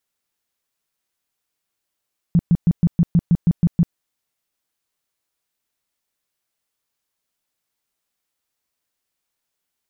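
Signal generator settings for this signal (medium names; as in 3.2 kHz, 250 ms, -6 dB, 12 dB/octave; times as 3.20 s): tone bursts 170 Hz, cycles 7, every 0.16 s, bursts 10, -10 dBFS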